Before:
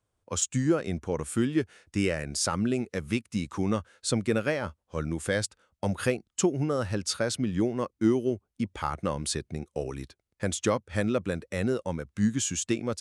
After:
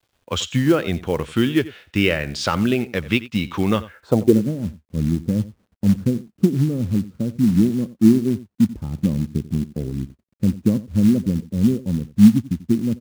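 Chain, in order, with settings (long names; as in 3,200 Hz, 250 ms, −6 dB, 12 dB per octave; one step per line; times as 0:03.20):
in parallel at −3 dB: speech leveller within 4 dB 2 s
on the sum: low-pass filter sweep 3,300 Hz → 220 Hz, 0:03.82–0:04.41
log-companded quantiser 6 bits
single-tap delay 89 ms −17.5 dB
level +3 dB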